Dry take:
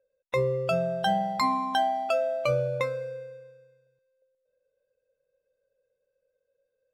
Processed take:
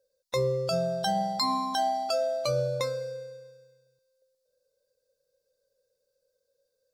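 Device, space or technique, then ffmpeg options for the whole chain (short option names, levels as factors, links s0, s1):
over-bright horn tweeter: -af "highshelf=f=3500:t=q:w=3:g=9,alimiter=limit=0.119:level=0:latency=1:release=66"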